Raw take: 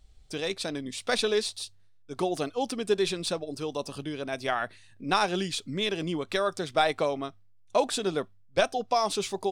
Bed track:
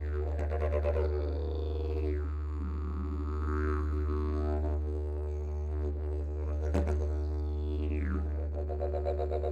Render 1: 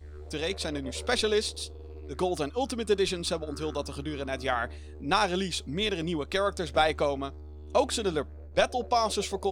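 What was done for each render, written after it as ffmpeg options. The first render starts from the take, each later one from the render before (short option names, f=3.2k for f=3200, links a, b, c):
-filter_complex "[1:a]volume=-11dB[a];[0:a][a]amix=inputs=2:normalize=0"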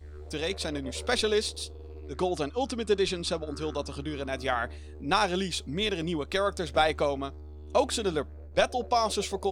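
-filter_complex "[0:a]asettb=1/sr,asplit=3[a][b][c];[a]atrim=end=2.094[d];[b]atrim=start=2.09:end=4.04,asetpts=PTS-STARTPTS,afade=t=in:d=0.004:c=qsin,afade=t=out:st=1.946:d=0.004:c=qsin,lowpass=9k[e];[c]atrim=start=4.036[f];[d][e]acrossfade=d=0.004:c1=hsin:c2=qsin[g];[g][f]acrossfade=d=0.004:c1=qsin:c2=hsin"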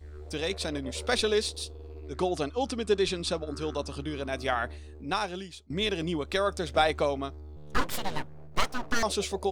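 -filter_complex "[0:a]asettb=1/sr,asplit=3[a][b][c];[a]atrim=end=7.564[d];[b]atrim=start=7.56:end=9.03,asetpts=PTS-STARTPTS,afade=t=in:d=0.004:c=qsin,afade=t=out:st=1.466:d=0.004:c=qsin,aeval=exprs='abs(val(0))':c=same[e];[c]atrim=start=9.026[f];[d][e]acrossfade=d=0.004:c1=hsin:c2=qsin[g];[g][f]acrossfade=d=0.004:c1=qsin:c2=hsin,asplit=2[h][i];[h]atrim=end=5.7,asetpts=PTS-STARTPTS,afade=t=out:st=4.71:d=0.99:silence=0.0668344[j];[i]atrim=start=5.7,asetpts=PTS-STARTPTS,afade=t=in:d=0.004:c=hsin:silence=0.0668344[k];[j][k]concat=n=2:v=0:a=1"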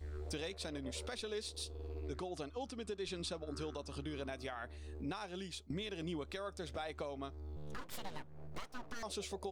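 -af "acompressor=threshold=-39dB:ratio=2.5,alimiter=level_in=8dB:limit=-24dB:level=0:latency=1:release=421,volume=-8dB"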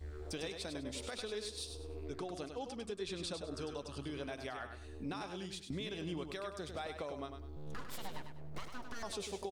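-af "aecho=1:1:100|200|300|400:0.447|0.134|0.0402|0.0121"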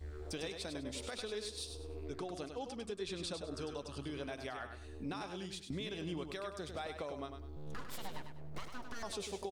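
-af anull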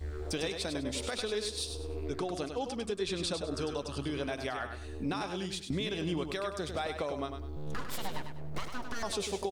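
-af "volume=7.5dB"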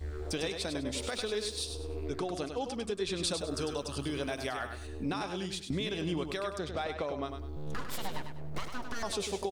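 -filter_complex "[0:a]asettb=1/sr,asplit=3[a][b][c];[a]atrim=end=1.004[d];[b]atrim=start=1:end=1.58,asetpts=PTS-STARTPTS,afade=t=in:d=0.004:c=qsin,afade=t=out:st=0.576:d=0.004:c=qsin,aeval=exprs='val(0)*gte(abs(val(0)),0.00158)':c=same[e];[c]atrim=start=1.576[f];[d][e]acrossfade=d=0.004:c1=hsin:c2=qsin[g];[g][f]acrossfade=d=0.004:c1=qsin:c2=hsin,asettb=1/sr,asplit=3[h][i][j];[h]atrim=end=3.234[k];[i]atrim=start=3.23:end=4.87,asetpts=PTS-STARTPTS,afade=t=in:d=0.004:c=qsin,afade=t=out:st=1.636:d=0.004:c=qsin,highshelf=f=7.5k:g=10[l];[j]atrim=start=4.866[m];[k][l]acrossfade=d=0.004:c1=hsin:c2=qsin[n];[n][m]acrossfade=d=0.004:c1=qsin:c2=hsin,asettb=1/sr,asplit=3[o][p][q];[o]atrim=end=6.584[r];[p]atrim=start=6.58:end=7.26,asetpts=PTS-STARTPTS,afade=t=in:d=0.004:c=qsin,afade=t=out:st=0.676:d=0.004:c=qsin,adynamicsmooth=sensitivity=5.5:basefreq=5.5k[s];[q]atrim=start=7.256[t];[r][s]acrossfade=d=0.004:c1=hsin:c2=qsin[u];[u][t]acrossfade=d=0.004:c1=qsin:c2=hsin"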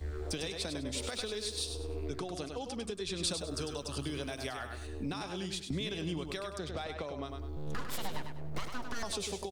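-filter_complex "[0:a]acrossover=split=180|3000[a][b][c];[b]acompressor=threshold=-37dB:ratio=6[d];[a][d][c]amix=inputs=3:normalize=0"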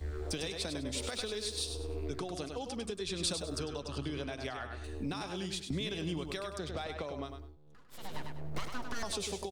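-filter_complex "[0:a]asettb=1/sr,asplit=3[a][b][c];[a]atrim=end=3.594[d];[b]atrim=start=3.59:end=4.84,asetpts=PTS-STARTPTS,afade=t=in:d=0.004:c=qsin,afade=t=out:st=1.246:d=0.004:c=qsin,adynamicsmooth=sensitivity=3:basefreq=5.1k[e];[c]atrim=start=4.836[f];[d][e]acrossfade=d=0.004:c1=hsin:c2=qsin[g];[g][f]acrossfade=d=0.004:c1=qsin:c2=hsin,asplit=3[h][i][j];[h]atrim=end=7.57,asetpts=PTS-STARTPTS,afade=t=out:st=7.21:d=0.36:silence=0.0749894[k];[i]atrim=start=7.57:end=7.9,asetpts=PTS-STARTPTS,volume=-22.5dB[l];[j]atrim=start=7.9,asetpts=PTS-STARTPTS,afade=t=in:d=0.36:silence=0.0749894[m];[k][l][m]concat=n=3:v=0:a=1"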